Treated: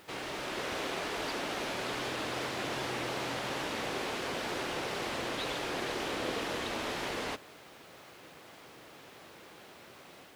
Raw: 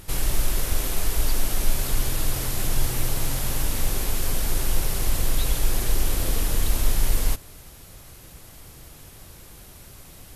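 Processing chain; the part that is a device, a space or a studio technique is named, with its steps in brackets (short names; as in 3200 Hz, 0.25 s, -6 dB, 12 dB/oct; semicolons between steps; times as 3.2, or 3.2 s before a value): dictaphone (BPF 310–3200 Hz; AGC gain up to 3.5 dB; wow and flutter; white noise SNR 28 dB); gain -2.5 dB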